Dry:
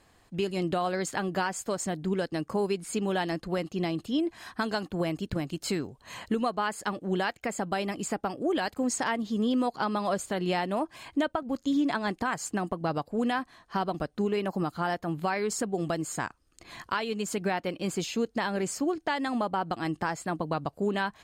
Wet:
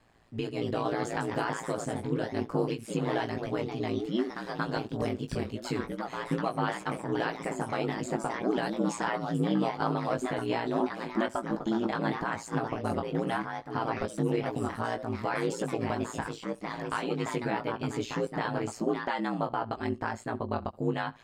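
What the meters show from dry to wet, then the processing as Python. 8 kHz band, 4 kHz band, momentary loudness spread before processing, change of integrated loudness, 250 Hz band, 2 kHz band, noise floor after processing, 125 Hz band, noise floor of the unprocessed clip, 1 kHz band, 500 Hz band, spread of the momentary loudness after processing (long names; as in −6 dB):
−8.5 dB, −4.0 dB, 4 LU, −1.5 dB, −1.5 dB, −2.0 dB, −47 dBFS, +1.5 dB, −64 dBFS, −1.5 dB, −1.0 dB, 4 LU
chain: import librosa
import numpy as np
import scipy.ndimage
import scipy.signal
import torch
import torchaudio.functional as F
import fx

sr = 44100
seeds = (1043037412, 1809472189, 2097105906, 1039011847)

y = fx.high_shelf(x, sr, hz=5100.0, db=-10.5)
y = y + 10.0 ** (-23.5 / 20.0) * np.pad(y, (int(74 * sr / 1000.0), 0))[:len(y)]
y = fx.echo_pitch(y, sr, ms=270, semitones=2, count=2, db_per_echo=-6.0)
y = fx.doubler(y, sr, ms=19.0, db=-6.0)
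y = y * np.sin(2.0 * np.pi * 58.0 * np.arange(len(y)) / sr)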